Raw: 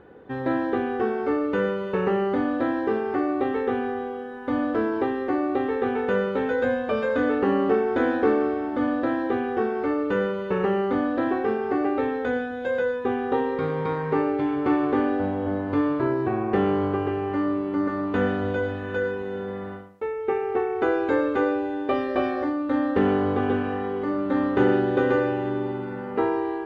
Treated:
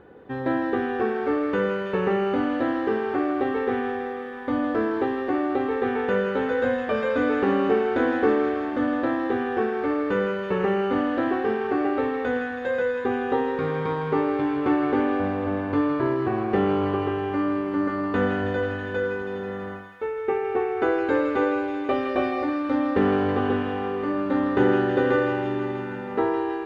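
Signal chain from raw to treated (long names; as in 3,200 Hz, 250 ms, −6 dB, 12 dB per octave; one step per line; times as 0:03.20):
delay with a high-pass on its return 162 ms, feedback 77%, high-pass 1,500 Hz, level −5 dB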